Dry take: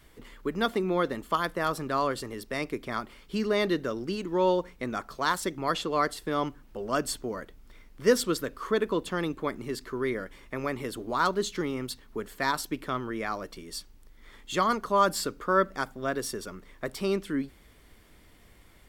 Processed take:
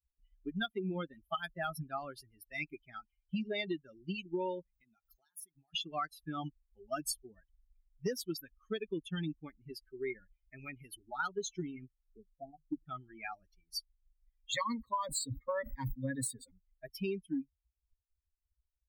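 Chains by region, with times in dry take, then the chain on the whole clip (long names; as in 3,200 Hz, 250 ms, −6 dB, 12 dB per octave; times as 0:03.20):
0:04.73–0:05.74: high-shelf EQ 6,200 Hz +8.5 dB + downward compressor 16 to 1, threshold −36 dBFS
0:11.88–0:12.86: Butterworth low-pass 770 Hz 96 dB per octave + mains-hum notches 50/100/150 Hz
0:14.52–0:16.51: EQ curve with evenly spaced ripples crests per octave 1, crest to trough 18 dB + level that may fall only so fast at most 100 dB per second
whole clip: spectral dynamics exaggerated over time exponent 3; parametric band 690 Hz −7 dB 2.6 octaves; downward compressor 16 to 1, threshold −42 dBFS; level +9.5 dB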